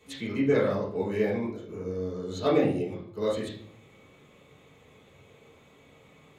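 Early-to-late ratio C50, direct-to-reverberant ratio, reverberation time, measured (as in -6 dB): 4.5 dB, -8.0 dB, 0.55 s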